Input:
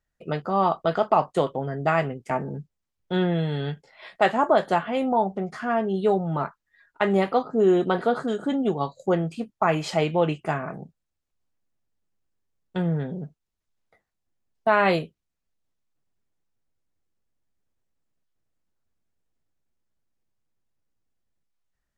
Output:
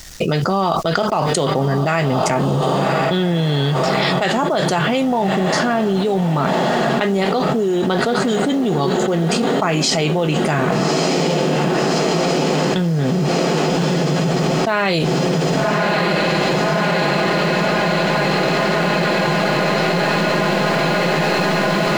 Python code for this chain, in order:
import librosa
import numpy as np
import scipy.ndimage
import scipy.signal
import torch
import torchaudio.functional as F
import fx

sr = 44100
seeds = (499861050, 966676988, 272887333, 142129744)

y = fx.peak_eq(x, sr, hz=910.0, db=-4.5, octaves=2.0)
y = fx.echo_diffused(y, sr, ms=1200, feedback_pct=71, wet_db=-13.5)
y = fx.quant_companded(y, sr, bits=8)
y = fx.peak_eq(y, sr, hz=5600.0, db=11.5, octaves=1.3)
y = fx.env_flatten(y, sr, amount_pct=100)